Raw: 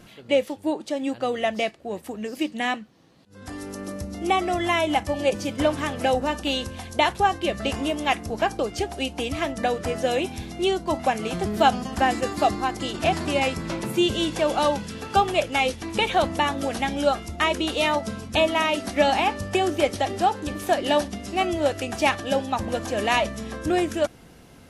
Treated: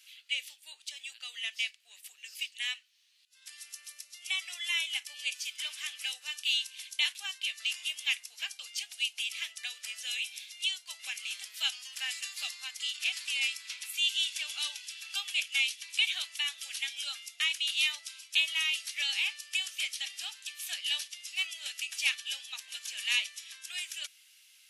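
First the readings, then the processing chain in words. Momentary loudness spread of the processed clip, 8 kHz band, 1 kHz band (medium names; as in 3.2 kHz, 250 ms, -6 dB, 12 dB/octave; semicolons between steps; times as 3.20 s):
12 LU, -0.5 dB, -32.5 dB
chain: Chebyshev high-pass 2.6 kHz, order 3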